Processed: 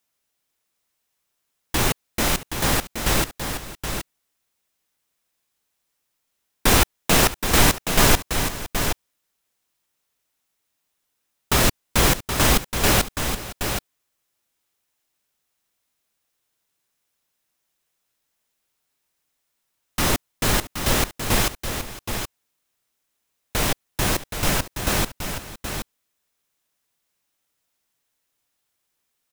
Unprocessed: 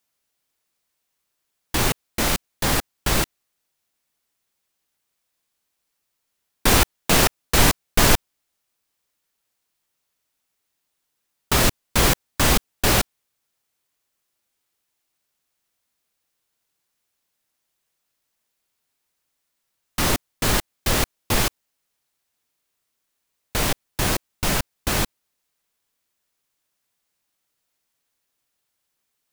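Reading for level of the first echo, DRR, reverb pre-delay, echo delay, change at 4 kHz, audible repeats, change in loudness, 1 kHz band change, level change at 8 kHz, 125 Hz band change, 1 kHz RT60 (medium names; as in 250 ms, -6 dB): -16.5 dB, no reverb, no reverb, 510 ms, +0.5 dB, 2, -0.5 dB, +1.0 dB, +1.0 dB, +0.5 dB, no reverb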